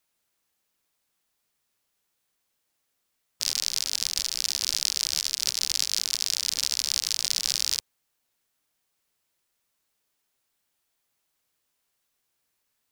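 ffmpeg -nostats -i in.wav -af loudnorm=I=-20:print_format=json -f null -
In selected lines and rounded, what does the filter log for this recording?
"input_i" : "-25.3",
"input_tp" : "-3.0",
"input_lra" : "5.3",
"input_thresh" : "-35.3",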